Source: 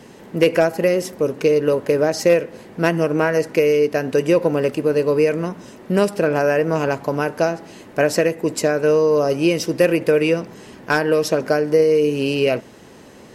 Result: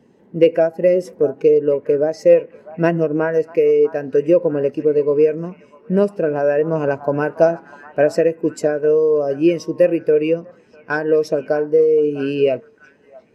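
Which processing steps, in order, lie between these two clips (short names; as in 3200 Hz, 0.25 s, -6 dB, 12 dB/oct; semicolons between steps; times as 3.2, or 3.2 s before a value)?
delay with a stepping band-pass 0.648 s, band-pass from 1000 Hz, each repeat 0.7 oct, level -8 dB; vocal rider within 4 dB 0.5 s; spectral expander 1.5:1; gain +1 dB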